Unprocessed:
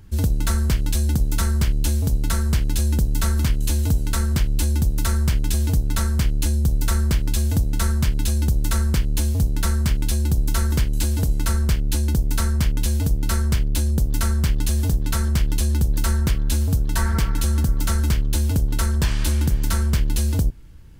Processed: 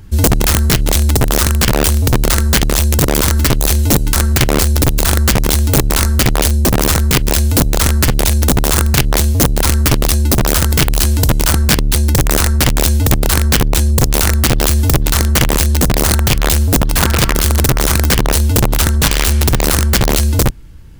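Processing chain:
wrap-around overflow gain 13.5 dB
speech leveller
level +7.5 dB

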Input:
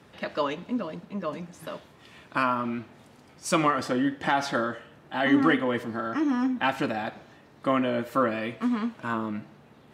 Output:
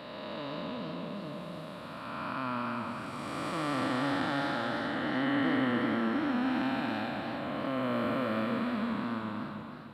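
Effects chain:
spectrum smeared in time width 730 ms
thirty-one-band graphic EQ 400 Hz −8 dB, 4,000 Hz +9 dB, 6,300 Hz −12 dB
feedback echo with a swinging delay time 304 ms, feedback 48%, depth 130 cents, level −9 dB

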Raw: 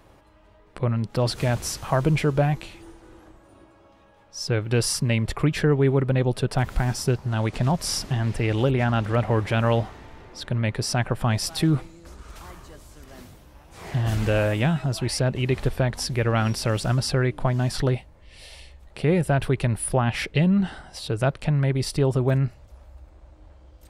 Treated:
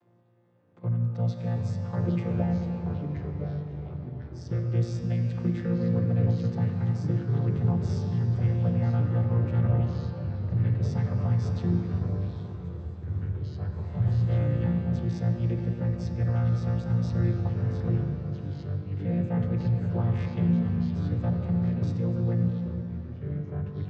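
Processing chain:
channel vocoder with a chord as carrier bare fifth, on A#2
0:09.67–0:10.44: all-pass dispersion highs, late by 106 ms, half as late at 1,300 Hz
0:17.33–0:17.84: downward compressor, threshold −26 dBFS, peak gain reduction 7.5 dB
on a send at −2 dB: convolution reverb RT60 4.5 s, pre-delay 13 ms
on the sum: delay with pitch and tempo change per echo 563 ms, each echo −3 semitones, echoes 3, each echo −6 dB
level −6.5 dB

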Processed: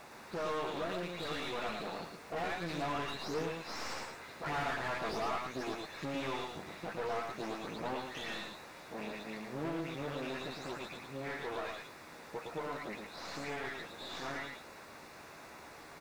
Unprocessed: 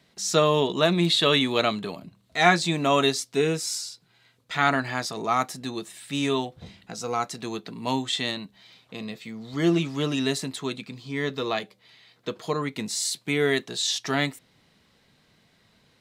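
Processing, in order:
every frequency bin delayed by itself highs late, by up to 271 ms
source passing by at 0:04.81, 8 m/s, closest 4.5 metres
downward compressor 3 to 1, threshold −52 dBFS, peak gain reduction 23.5 dB
harmonic generator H 4 −13 dB, 6 −12 dB, 7 −19 dB, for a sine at −33 dBFS
high-frequency loss of the air 110 metres
background noise pink −77 dBFS
notch filter 3,100 Hz, Q 5.1
mid-hump overdrive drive 39 dB, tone 1,500 Hz, clips at −27.5 dBFS
double-tracking delay 13 ms −11 dB
single-tap delay 112 ms −4.5 dB

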